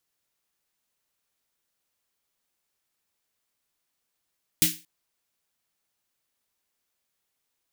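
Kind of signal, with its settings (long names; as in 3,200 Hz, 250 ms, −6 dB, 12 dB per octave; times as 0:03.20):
synth snare length 0.23 s, tones 170 Hz, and 310 Hz, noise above 2,100 Hz, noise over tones 8.5 dB, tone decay 0.27 s, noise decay 0.30 s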